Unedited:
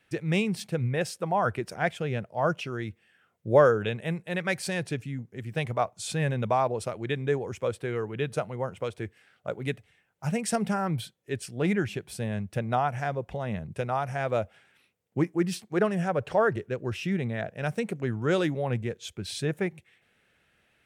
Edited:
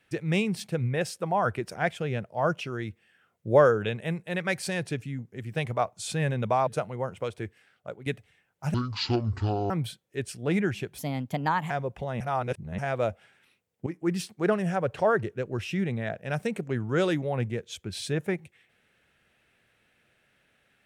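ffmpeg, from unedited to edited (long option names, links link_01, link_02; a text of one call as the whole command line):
ffmpeg -i in.wav -filter_complex "[0:a]asplit=10[link_01][link_02][link_03][link_04][link_05][link_06][link_07][link_08][link_09][link_10];[link_01]atrim=end=6.672[link_11];[link_02]atrim=start=8.268:end=9.66,asetpts=PTS-STARTPTS,afade=type=out:start_time=0.662:duration=0.73:curve=qsin:silence=0.281838[link_12];[link_03]atrim=start=9.66:end=10.344,asetpts=PTS-STARTPTS,afade=type=in:duration=0.004:curve=hsin:silence=0.281838[link_13];[link_04]atrim=start=10.34:end=10.84,asetpts=PTS-STARTPTS,asetrate=22932,aresample=44100[link_14];[link_05]atrim=start=10.836:end=12.124[link_15];[link_06]atrim=start=12.12:end=13.03,asetpts=PTS-STARTPTS,asetrate=55566,aresample=44100[link_16];[link_07]atrim=start=13.026:end=13.532[link_17];[link_08]atrim=start=13.528:end=14.112,asetpts=PTS-STARTPTS,areverse[link_18];[link_09]atrim=start=14.108:end=15.19,asetpts=PTS-STARTPTS,afade=type=out:start_time=1.078:duration=0.004:curve=hsin:silence=0.199526[link_19];[link_10]atrim=start=15.19,asetpts=PTS-STARTPTS,afade=type=in:duration=0.26:silence=0.199526[link_20];[link_12][link_13]concat=n=2:v=0:a=1[link_21];[link_11][link_21]acrossfade=duration=0.004:curve1=hsin:curve2=hsin[link_22];[link_22][link_14]acrossfade=duration=0.004:curve1=hsin:curve2=hsin[link_23];[link_23][link_15]acrossfade=duration=0.004:curve1=hsin:curve2=hsin[link_24];[link_24][link_16]acrossfade=duration=0.004:curve1=hsin:curve2=hsin[link_25];[link_25][link_17]acrossfade=duration=0.004:curve1=hsin:curve2=hsin[link_26];[link_26][link_18]acrossfade=duration=0.004:curve1=hsin:curve2=hsin[link_27];[link_19][link_20]concat=n=2:v=0:a=1[link_28];[link_27][link_28]acrossfade=duration=0.004:curve1=hsin:curve2=hsin" out.wav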